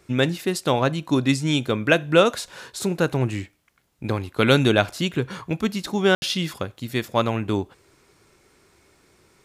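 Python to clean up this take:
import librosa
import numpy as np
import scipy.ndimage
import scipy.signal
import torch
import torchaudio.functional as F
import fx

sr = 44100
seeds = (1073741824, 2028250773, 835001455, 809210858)

y = fx.fix_ambience(x, sr, seeds[0], print_start_s=3.51, print_end_s=4.01, start_s=6.15, end_s=6.22)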